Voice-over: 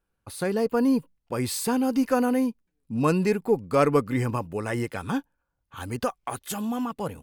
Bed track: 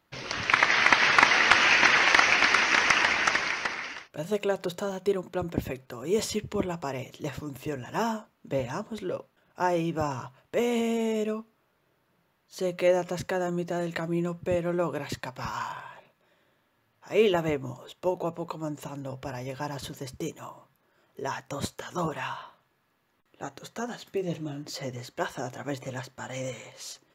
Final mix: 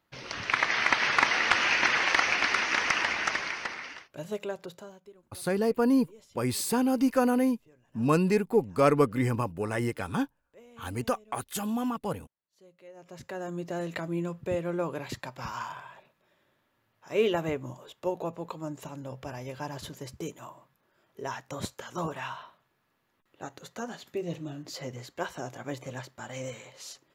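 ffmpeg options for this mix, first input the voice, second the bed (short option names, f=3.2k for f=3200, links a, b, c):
-filter_complex "[0:a]adelay=5050,volume=-1.5dB[a];[1:a]volume=20dB,afade=t=out:st=4.19:d=0.92:silence=0.0707946,afade=t=in:st=12.94:d=0.83:silence=0.0595662[b];[a][b]amix=inputs=2:normalize=0"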